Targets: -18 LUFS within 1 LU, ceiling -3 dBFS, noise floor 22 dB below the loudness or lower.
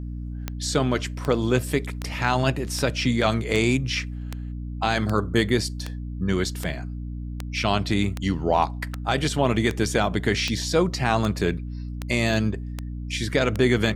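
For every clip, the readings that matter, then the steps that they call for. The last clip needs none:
clicks 18; hum 60 Hz; harmonics up to 300 Hz; hum level -30 dBFS; loudness -24.5 LUFS; peak -6.5 dBFS; loudness target -18.0 LUFS
-> de-click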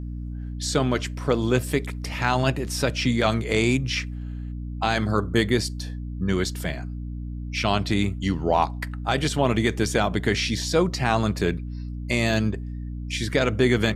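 clicks 0; hum 60 Hz; harmonics up to 300 Hz; hum level -30 dBFS
-> de-hum 60 Hz, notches 5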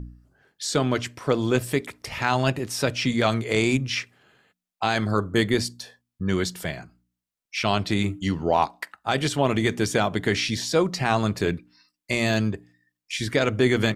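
hum none; loudness -24.5 LUFS; peak -7.0 dBFS; loudness target -18.0 LUFS
-> gain +6.5 dB; limiter -3 dBFS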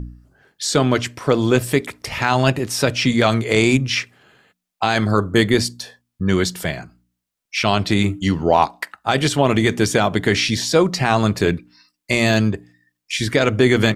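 loudness -18.5 LUFS; peak -3.0 dBFS; noise floor -80 dBFS

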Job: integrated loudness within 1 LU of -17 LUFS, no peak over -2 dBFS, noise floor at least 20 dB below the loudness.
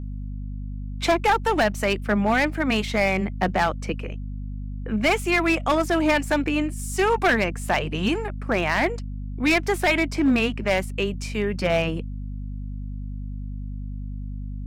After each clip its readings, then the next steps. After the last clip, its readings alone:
clipped 1.5%; flat tops at -14.0 dBFS; hum 50 Hz; harmonics up to 250 Hz; hum level -29 dBFS; loudness -23.0 LUFS; peak -14.0 dBFS; loudness target -17.0 LUFS
-> clip repair -14 dBFS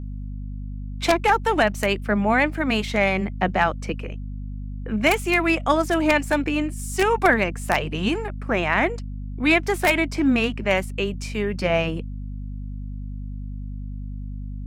clipped 0.0%; hum 50 Hz; harmonics up to 250 Hz; hum level -29 dBFS
-> notches 50/100/150/200/250 Hz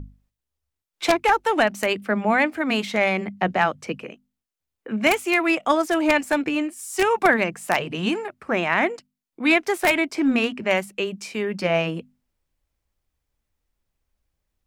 hum none; loudness -22.0 LUFS; peak -4.5 dBFS; loudness target -17.0 LUFS
-> gain +5 dB; limiter -2 dBFS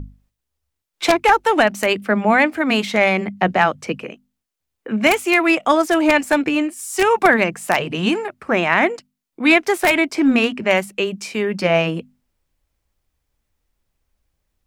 loudness -17.5 LUFS; peak -2.0 dBFS; noise floor -79 dBFS

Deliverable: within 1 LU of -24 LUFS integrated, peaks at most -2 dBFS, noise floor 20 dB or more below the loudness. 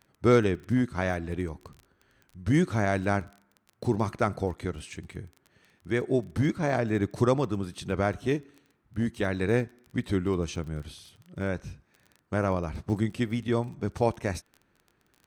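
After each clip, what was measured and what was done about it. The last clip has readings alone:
ticks 19/s; loudness -29.0 LUFS; peak -9.5 dBFS; loudness target -24.0 LUFS
-> de-click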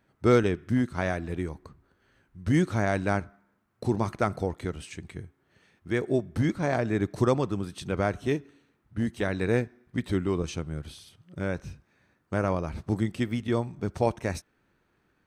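ticks 0/s; loudness -29.0 LUFS; peak -9.5 dBFS; loudness target -24.0 LUFS
-> gain +5 dB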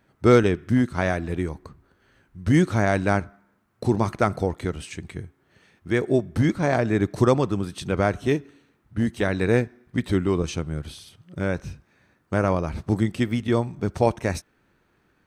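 loudness -24.0 LUFS; peak -4.5 dBFS; noise floor -66 dBFS

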